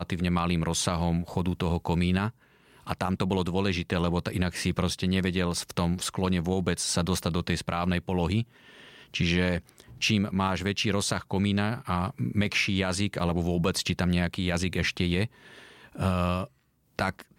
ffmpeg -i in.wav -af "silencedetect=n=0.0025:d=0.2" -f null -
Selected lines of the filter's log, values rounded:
silence_start: 16.48
silence_end: 16.97 | silence_duration: 0.49